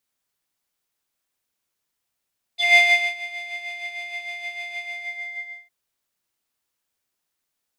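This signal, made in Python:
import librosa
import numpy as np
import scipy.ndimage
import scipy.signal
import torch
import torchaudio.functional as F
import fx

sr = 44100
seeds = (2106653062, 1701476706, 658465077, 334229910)

y = fx.sub_patch_tremolo(sr, seeds[0], note=77, wave='square', wave2='saw', interval_st=19, detune_cents=10, level2_db=-16.0, sub_db=-22.5, noise_db=-15, kind='bandpass', cutoff_hz=2000.0, q=9.6, env_oct=1.0, env_decay_s=0.06, env_sustain_pct=30, attack_ms=142.0, decay_s=0.42, sustain_db=-20.0, release_s=0.9, note_s=2.21, lfo_hz=6.5, tremolo_db=6.0)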